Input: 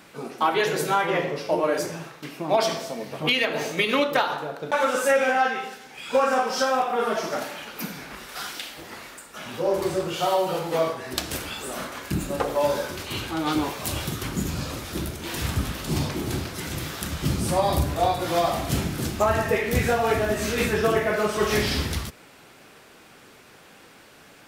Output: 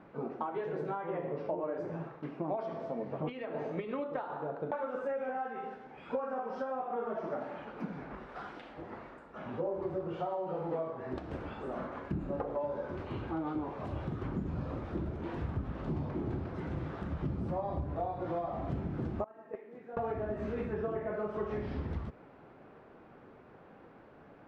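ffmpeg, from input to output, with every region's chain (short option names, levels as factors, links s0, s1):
-filter_complex "[0:a]asettb=1/sr,asplit=3[s0][s1][s2];[s0]atrim=end=19.244[s3];[s1]atrim=start=19.24:end=19.97,asetpts=PTS-STARTPTS,afade=t=in:d=0.004:c=qsin,afade=t=out:st=0.726:d=0.004:c=qsin,highpass=f=220:w=0.5412,highpass=f=220:w=1.3066,agate=range=0.0891:threshold=0.126:ratio=16:release=100:detection=peak[s4];[s2]atrim=start=19.966[s5];[s3][s4]acrossfade=d=0.004:c1=hsin:c2=qsin[s6];[s6][s5]acrossfade=d=0.004:c1=qsin:c2=hsin,acompressor=threshold=0.0355:ratio=10,lowpass=1000,volume=0.794"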